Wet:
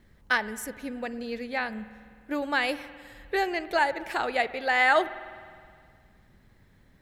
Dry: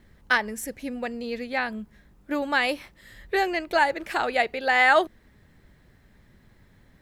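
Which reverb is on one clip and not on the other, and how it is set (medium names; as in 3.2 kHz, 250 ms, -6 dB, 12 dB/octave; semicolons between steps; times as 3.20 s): spring tank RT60 2.1 s, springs 51 ms, chirp 70 ms, DRR 15 dB; trim -3 dB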